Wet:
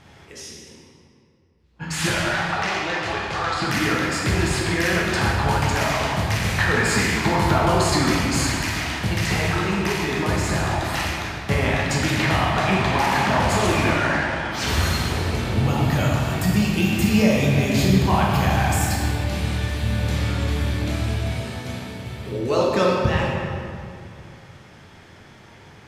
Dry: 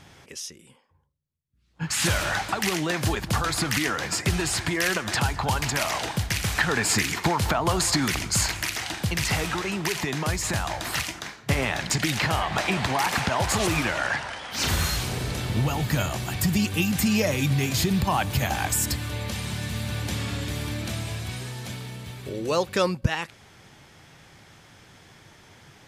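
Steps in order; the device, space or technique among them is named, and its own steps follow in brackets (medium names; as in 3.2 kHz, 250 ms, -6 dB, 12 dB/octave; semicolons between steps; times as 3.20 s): 2.10–3.62 s: three-band isolator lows -13 dB, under 500 Hz, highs -23 dB, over 6.8 kHz; swimming-pool hall (reverberation RT60 2.4 s, pre-delay 9 ms, DRR -4 dB; treble shelf 4.8 kHz -8 dB)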